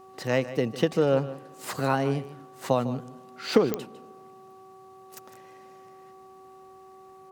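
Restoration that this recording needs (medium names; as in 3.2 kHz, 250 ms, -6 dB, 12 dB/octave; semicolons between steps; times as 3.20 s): clip repair -8.5 dBFS; de-click; de-hum 380.1 Hz, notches 3; inverse comb 153 ms -14.5 dB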